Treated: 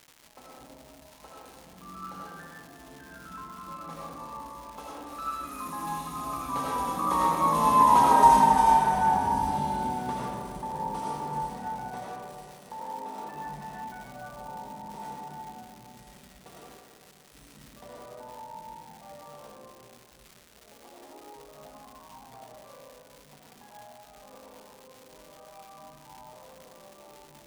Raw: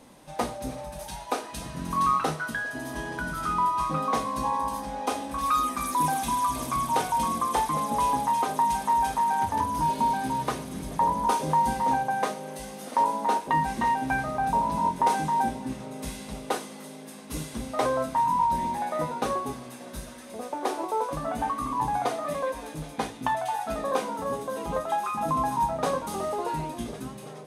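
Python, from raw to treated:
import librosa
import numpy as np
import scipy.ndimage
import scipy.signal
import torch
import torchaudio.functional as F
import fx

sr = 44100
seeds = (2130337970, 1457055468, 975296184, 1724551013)

y = fx.doppler_pass(x, sr, speed_mps=20, closest_m=9.7, pass_at_s=8.16)
y = fx.rev_freeverb(y, sr, rt60_s=2.1, hf_ratio=0.3, predelay_ms=45, drr_db=-6.0)
y = fx.dmg_crackle(y, sr, seeds[0], per_s=410.0, level_db=-40.0)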